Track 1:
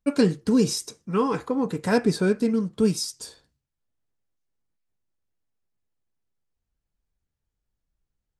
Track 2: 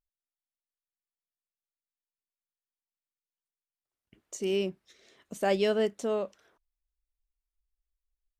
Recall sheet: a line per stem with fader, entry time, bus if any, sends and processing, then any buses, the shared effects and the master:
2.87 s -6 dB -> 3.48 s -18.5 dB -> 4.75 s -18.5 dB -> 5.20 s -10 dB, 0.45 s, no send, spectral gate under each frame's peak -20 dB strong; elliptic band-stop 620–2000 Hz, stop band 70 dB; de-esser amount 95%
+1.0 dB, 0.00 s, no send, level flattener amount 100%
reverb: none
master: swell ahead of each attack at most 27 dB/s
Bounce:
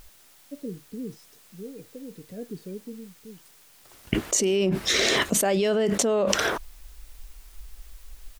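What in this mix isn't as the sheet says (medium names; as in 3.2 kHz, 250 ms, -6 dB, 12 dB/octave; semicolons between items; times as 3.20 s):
stem 1 -6.0 dB -> -15.0 dB; master: missing swell ahead of each attack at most 27 dB/s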